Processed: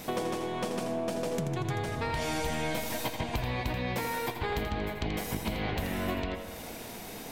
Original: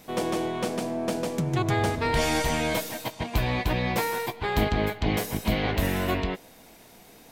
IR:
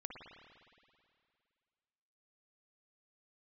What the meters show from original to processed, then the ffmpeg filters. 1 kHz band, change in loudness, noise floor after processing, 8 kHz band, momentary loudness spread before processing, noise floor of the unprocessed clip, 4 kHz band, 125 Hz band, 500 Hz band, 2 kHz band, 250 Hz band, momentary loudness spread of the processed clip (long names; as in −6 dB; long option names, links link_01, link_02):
−5.5 dB, −6.0 dB, −43 dBFS, −5.0 dB, 5 LU, −52 dBFS, −5.5 dB, −6.0 dB, −5.0 dB, −6.0 dB, −6.0 dB, 6 LU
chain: -filter_complex "[0:a]acompressor=threshold=-38dB:ratio=12,asplit=2[link_01][link_02];[1:a]atrim=start_sample=2205,adelay=83[link_03];[link_02][link_03]afir=irnorm=-1:irlink=0,volume=-2.5dB[link_04];[link_01][link_04]amix=inputs=2:normalize=0,volume=8dB"